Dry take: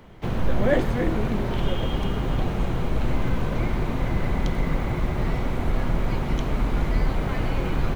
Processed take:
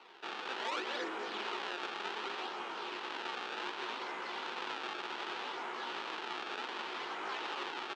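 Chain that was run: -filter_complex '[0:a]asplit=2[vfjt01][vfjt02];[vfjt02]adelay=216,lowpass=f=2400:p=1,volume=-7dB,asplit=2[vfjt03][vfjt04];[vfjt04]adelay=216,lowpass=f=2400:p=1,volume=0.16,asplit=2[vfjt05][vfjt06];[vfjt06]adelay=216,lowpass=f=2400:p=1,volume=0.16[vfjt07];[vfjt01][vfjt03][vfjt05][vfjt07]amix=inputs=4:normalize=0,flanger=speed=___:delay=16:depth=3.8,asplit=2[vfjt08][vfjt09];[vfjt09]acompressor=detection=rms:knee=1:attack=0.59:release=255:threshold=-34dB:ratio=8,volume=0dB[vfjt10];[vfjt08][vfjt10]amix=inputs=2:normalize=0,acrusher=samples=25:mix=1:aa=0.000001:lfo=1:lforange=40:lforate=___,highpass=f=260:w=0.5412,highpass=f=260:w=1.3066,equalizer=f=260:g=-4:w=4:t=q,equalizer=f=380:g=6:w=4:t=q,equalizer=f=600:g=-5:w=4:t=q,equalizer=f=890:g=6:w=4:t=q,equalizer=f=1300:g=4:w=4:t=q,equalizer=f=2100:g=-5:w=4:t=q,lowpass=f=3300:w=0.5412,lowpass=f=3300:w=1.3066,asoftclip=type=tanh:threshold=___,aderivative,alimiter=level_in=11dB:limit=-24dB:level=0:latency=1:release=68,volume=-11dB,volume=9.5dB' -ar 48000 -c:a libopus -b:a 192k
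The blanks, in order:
1.2, 0.66, -13.5dB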